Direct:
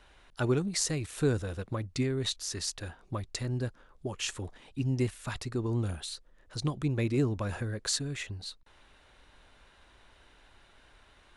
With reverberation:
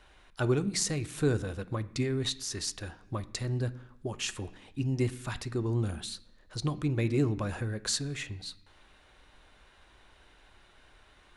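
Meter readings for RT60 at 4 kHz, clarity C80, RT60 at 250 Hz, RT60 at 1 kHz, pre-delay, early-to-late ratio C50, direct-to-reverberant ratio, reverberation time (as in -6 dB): 0.95 s, 20.5 dB, 0.85 s, 0.70 s, 3 ms, 18.0 dB, 10.5 dB, 0.70 s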